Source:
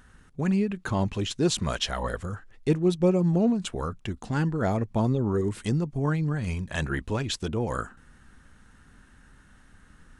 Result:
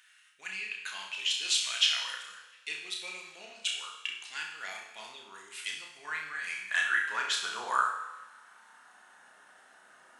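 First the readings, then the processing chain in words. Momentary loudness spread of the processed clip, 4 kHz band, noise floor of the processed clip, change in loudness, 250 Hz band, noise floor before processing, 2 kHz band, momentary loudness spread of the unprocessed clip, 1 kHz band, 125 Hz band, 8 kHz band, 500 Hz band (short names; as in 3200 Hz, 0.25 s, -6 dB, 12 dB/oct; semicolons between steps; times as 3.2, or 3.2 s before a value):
18 LU, +5.5 dB, -59 dBFS, -4.5 dB, -36.0 dB, -56 dBFS, +5.5 dB, 10 LU, -1.5 dB, under -40 dB, +2.0 dB, -23.0 dB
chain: high-pass sweep 2500 Hz -> 650 Hz, 5.5–9.37; on a send: flutter echo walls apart 5.5 m, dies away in 0.4 s; on the sum: two-slope reverb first 0.98 s, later 2.6 s, from -23 dB, DRR 3.5 dB; gain -2 dB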